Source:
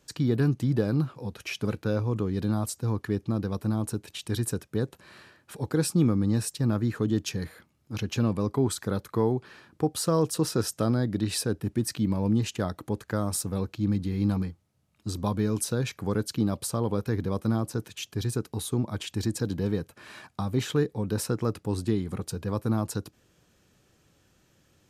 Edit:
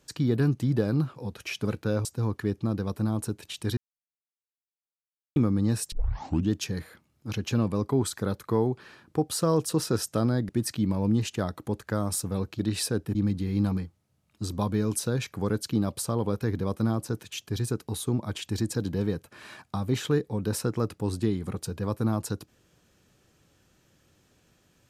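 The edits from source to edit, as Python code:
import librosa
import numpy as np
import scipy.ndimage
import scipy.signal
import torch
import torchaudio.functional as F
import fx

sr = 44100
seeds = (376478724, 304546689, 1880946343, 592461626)

y = fx.edit(x, sr, fx.cut(start_s=2.05, length_s=0.65),
    fx.silence(start_s=4.42, length_s=1.59),
    fx.tape_start(start_s=6.57, length_s=0.59),
    fx.move(start_s=11.14, length_s=0.56, to_s=13.8), tone=tone)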